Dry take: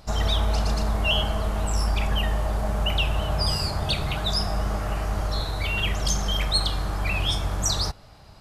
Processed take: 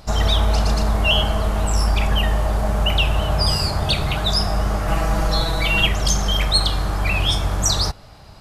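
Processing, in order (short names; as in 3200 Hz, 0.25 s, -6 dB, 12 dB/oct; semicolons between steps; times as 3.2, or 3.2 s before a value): 4.87–5.87 comb 6.1 ms, depth 100%; gain +5.5 dB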